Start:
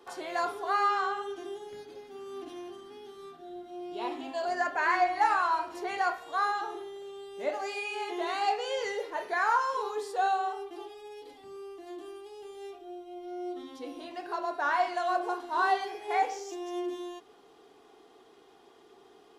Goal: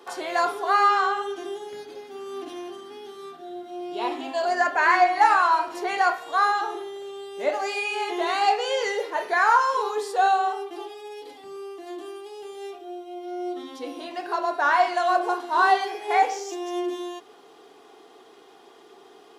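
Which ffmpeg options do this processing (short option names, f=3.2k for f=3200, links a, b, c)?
-af "highpass=f=270:p=1,volume=8dB"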